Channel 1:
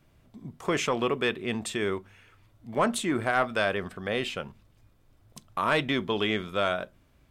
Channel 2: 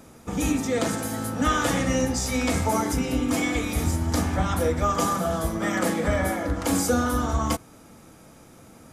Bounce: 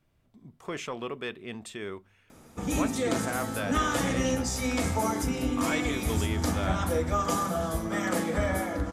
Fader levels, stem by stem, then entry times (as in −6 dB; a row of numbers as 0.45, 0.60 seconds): −8.5, −4.0 decibels; 0.00, 2.30 seconds